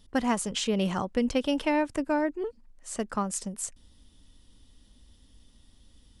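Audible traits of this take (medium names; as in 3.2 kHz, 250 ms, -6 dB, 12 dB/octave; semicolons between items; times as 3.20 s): noise floor -60 dBFS; spectral tilt -4.0 dB/octave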